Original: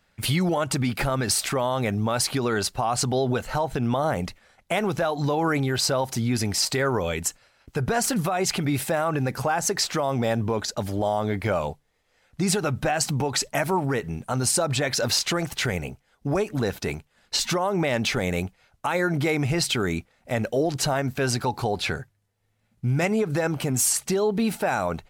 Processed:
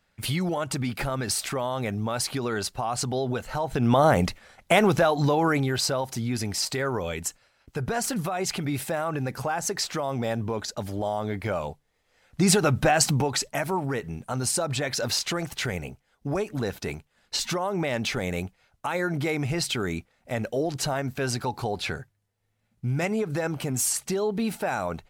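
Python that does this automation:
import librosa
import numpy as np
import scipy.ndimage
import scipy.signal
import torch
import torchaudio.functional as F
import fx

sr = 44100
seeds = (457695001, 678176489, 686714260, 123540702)

y = fx.gain(x, sr, db=fx.line((3.57, -4.0), (3.99, 5.5), (4.8, 5.5), (6.08, -4.0), (11.69, -4.0), (12.48, 3.5), (13.06, 3.5), (13.47, -3.5)))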